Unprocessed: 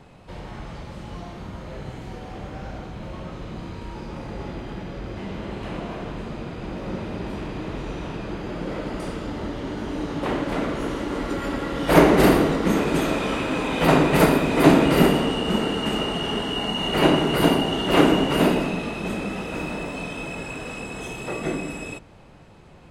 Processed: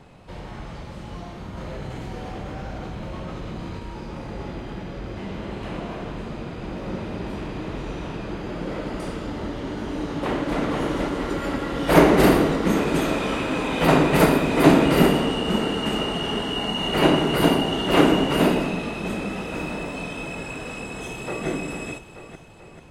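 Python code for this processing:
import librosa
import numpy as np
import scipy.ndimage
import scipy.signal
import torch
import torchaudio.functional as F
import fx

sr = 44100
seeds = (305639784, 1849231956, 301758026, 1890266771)

y = fx.env_flatten(x, sr, amount_pct=70, at=(1.57, 3.79))
y = fx.echo_throw(y, sr, start_s=10.0, length_s=0.61, ms=480, feedback_pct=50, wet_db=-3.0)
y = fx.echo_throw(y, sr, start_s=20.96, length_s=0.51, ms=440, feedback_pct=55, wet_db=-7.5)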